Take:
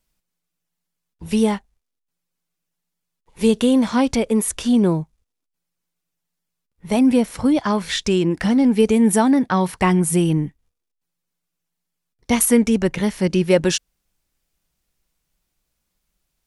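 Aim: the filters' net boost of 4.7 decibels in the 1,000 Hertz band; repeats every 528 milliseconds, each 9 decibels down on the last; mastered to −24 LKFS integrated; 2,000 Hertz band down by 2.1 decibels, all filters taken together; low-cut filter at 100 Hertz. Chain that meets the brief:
high-pass filter 100 Hz
parametric band 1,000 Hz +6.5 dB
parametric band 2,000 Hz −4.5 dB
repeating echo 528 ms, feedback 35%, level −9 dB
level −6 dB

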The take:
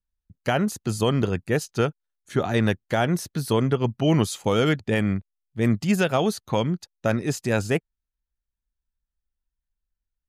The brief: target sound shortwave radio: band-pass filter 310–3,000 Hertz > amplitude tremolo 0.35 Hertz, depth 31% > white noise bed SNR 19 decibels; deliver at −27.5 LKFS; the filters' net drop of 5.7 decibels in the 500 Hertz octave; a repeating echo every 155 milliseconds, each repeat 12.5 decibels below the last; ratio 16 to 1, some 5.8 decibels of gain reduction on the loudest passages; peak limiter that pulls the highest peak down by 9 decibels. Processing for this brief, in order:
parametric band 500 Hz −6 dB
downward compressor 16 to 1, threshold −23 dBFS
brickwall limiter −23.5 dBFS
band-pass filter 310–3,000 Hz
repeating echo 155 ms, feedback 24%, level −12.5 dB
amplitude tremolo 0.35 Hz, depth 31%
white noise bed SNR 19 dB
level +13 dB

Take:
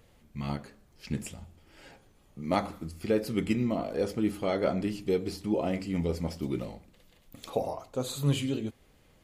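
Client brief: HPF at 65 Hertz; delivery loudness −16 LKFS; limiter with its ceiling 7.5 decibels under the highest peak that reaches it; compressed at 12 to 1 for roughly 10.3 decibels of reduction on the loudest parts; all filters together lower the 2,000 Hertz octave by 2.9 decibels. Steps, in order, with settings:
high-pass filter 65 Hz
parametric band 2,000 Hz −3.5 dB
downward compressor 12 to 1, threshold −32 dBFS
level +24.5 dB
brickwall limiter −4 dBFS

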